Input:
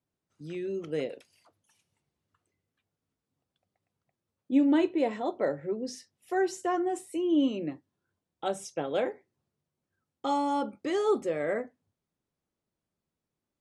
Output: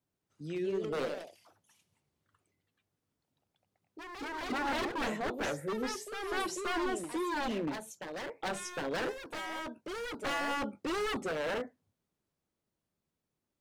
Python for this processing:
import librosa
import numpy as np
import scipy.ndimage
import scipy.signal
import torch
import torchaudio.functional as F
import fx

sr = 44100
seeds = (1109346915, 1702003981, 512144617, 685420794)

y = 10.0 ** (-29.0 / 20.0) * (np.abs((x / 10.0 ** (-29.0 / 20.0) + 3.0) % 4.0 - 2.0) - 1.0)
y = fx.echo_pitch(y, sr, ms=199, semitones=2, count=2, db_per_echo=-6.0)